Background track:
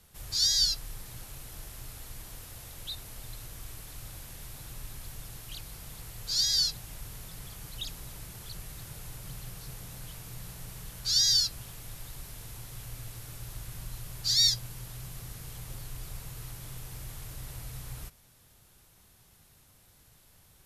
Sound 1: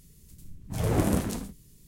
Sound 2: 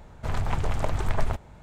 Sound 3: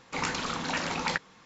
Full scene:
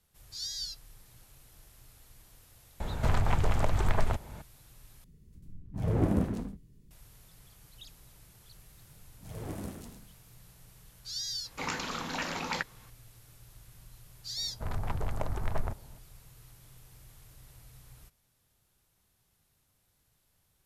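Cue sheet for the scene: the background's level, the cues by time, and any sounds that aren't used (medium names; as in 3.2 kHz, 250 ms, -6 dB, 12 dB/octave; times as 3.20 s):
background track -12.5 dB
2.80 s: add 2 -1 dB + three bands compressed up and down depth 70%
5.04 s: replace with 1 -1.5 dB + FFT filter 240 Hz 0 dB, 1.8 kHz -7 dB, 8.3 kHz -18 dB
8.51 s: add 1 -15.5 dB + delay 104 ms -7.5 dB
11.45 s: add 3 -4 dB
14.37 s: add 2 -6.5 dB + local Wiener filter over 15 samples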